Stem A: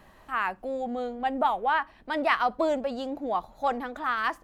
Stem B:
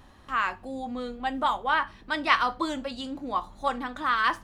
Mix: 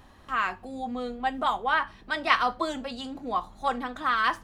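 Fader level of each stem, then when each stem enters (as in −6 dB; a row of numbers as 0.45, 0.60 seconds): −9.0, −0.5 decibels; 0.00, 0.00 seconds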